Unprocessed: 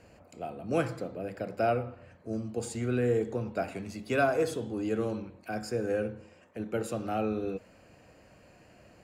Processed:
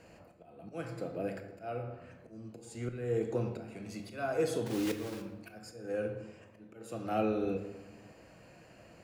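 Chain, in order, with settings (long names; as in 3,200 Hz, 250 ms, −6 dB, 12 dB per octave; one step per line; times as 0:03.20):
0:04.66–0:05.22: one scale factor per block 3 bits
low-shelf EQ 72 Hz −6 dB
volume swells 482 ms
rectangular room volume 460 cubic metres, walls mixed, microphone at 0.67 metres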